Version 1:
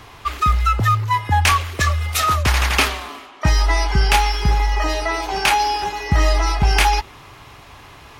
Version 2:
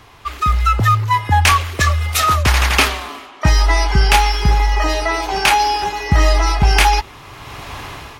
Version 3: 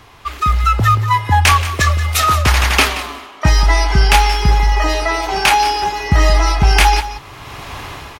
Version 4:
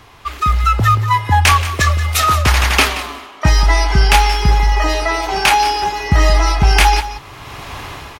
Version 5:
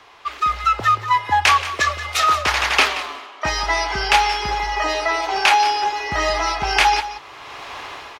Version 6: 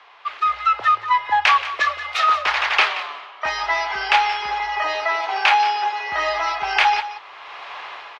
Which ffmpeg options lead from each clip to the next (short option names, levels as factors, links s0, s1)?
-af "dynaudnorm=f=190:g=5:m=5.96,volume=0.708"
-af "aecho=1:1:178:0.211,volume=1.12"
-af anull
-filter_complex "[0:a]acrossover=split=350 6700:gain=0.126 1 0.224[s0][s1][s2];[s0][s1][s2]amix=inputs=3:normalize=0,volume=0.794"
-filter_complex "[0:a]acrossover=split=520 4400:gain=0.112 1 0.0891[s0][s1][s2];[s0][s1][s2]amix=inputs=3:normalize=0"